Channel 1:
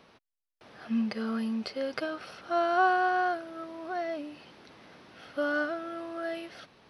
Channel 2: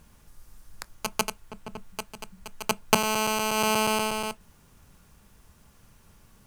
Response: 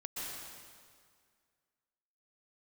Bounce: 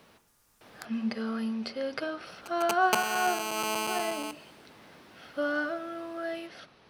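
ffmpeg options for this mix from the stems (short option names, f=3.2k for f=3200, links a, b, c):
-filter_complex "[0:a]bandreject=f=45.87:t=h:w=4,bandreject=f=91.74:t=h:w=4,bandreject=f=137.61:t=h:w=4,bandreject=f=183.48:t=h:w=4,bandreject=f=229.35:t=h:w=4,bandreject=f=275.22:t=h:w=4,bandreject=f=321.09:t=h:w=4,bandreject=f=366.96:t=h:w=4,bandreject=f=412.83:t=h:w=4,bandreject=f=458.7:t=h:w=4,bandreject=f=504.57:t=h:w=4,bandreject=f=550.44:t=h:w=4,bandreject=f=596.31:t=h:w=4,bandreject=f=642.18:t=h:w=4,bandreject=f=688.05:t=h:w=4,bandreject=f=733.92:t=h:w=4,bandreject=f=779.79:t=h:w=4,bandreject=f=825.66:t=h:w=4,bandreject=f=871.53:t=h:w=4,bandreject=f=917.4:t=h:w=4,bandreject=f=963.27:t=h:w=4,bandreject=f=1.00914k:t=h:w=4,bandreject=f=1.05501k:t=h:w=4,bandreject=f=1.10088k:t=h:w=4,bandreject=f=1.14675k:t=h:w=4,bandreject=f=1.19262k:t=h:w=4,bandreject=f=1.23849k:t=h:w=4,bandreject=f=1.28436k:t=h:w=4,bandreject=f=1.33023k:t=h:w=4,bandreject=f=1.3761k:t=h:w=4,bandreject=f=1.42197k:t=h:w=4,bandreject=f=1.46784k:t=h:w=4,volume=0dB[a];[1:a]highpass=f=340:p=1,volume=-6.5dB,asplit=3[b][c][d];[b]atrim=end=0.86,asetpts=PTS-STARTPTS,afade=t=out:st=0.856:d=0.004:c=hsin[e];[c]atrim=start=0.86:end=2.26,asetpts=PTS-STARTPTS,volume=0[f];[d]atrim=start=2.26,asetpts=PTS-STARTPTS,afade=t=in:d=0.004:c=hsin[g];[e][f][g]concat=n=3:v=0:a=1,asplit=2[h][i];[i]volume=-20.5dB[j];[2:a]atrim=start_sample=2205[k];[j][k]afir=irnorm=-1:irlink=0[l];[a][h][l]amix=inputs=3:normalize=0"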